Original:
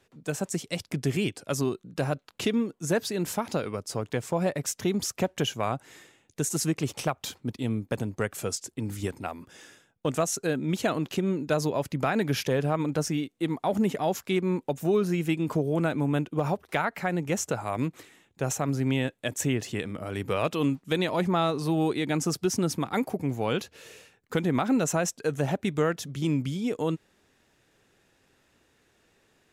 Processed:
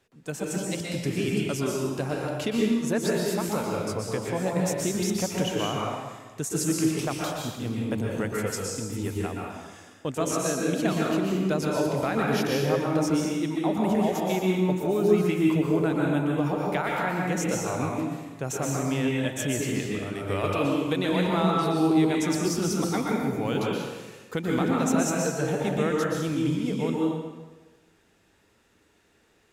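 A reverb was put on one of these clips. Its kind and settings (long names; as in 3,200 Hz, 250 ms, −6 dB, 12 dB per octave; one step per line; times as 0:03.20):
dense smooth reverb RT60 1.3 s, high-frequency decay 0.8×, pre-delay 110 ms, DRR −3 dB
level −3 dB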